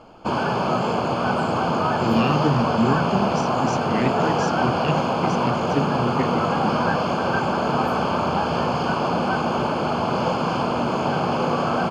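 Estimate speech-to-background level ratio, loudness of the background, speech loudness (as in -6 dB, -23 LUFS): -4.5 dB, -22.0 LUFS, -26.5 LUFS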